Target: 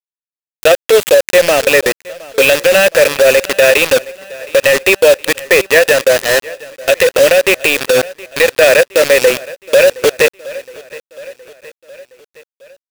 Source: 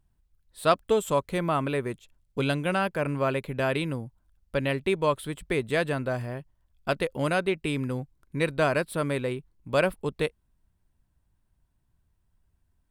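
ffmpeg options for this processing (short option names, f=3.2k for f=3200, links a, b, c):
-filter_complex "[0:a]asplit=3[a][b][c];[a]bandpass=f=530:t=q:w=8,volume=0dB[d];[b]bandpass=f=1.84k:t=q:w=8,volume=-6dB[e];[c]bandpass=f=2.48k:t=q:w=8,volume=-9dB[f];[d][e][f]amix=inputs=3:normalize=0,aemphasis=mode=production:type=75fm,asplit=2[g][h];[h]highpass=f=720:p=1,volume=17dB,asoftclip=type=tanh:threshold=-19.5dB[i];[g][i]amix=inputs=2:normalize=0,lowpass=f=7.9k:p=1,volume=-6dB,acrusher=bits=5:mix=0:aa=0.000001,asplit=2[j][k];[k]aecho=0:1:717|1434|2151|2868:0.0631|0.0353|0.0198|0.0111[l];[j][l]amix=inputs=2:normalize=0,alimiter=level_in=25.5dB:limit=-1dB:release=50:level=0:latency=1,volume=-1dB"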